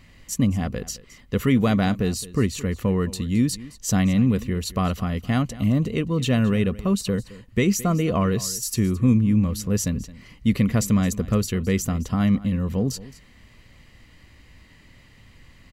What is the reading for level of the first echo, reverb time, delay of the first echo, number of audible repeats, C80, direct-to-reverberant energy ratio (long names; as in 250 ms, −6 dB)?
−18.5 dB, no reverb audible, 217 ms, 1, no reverb audible, no reverb audible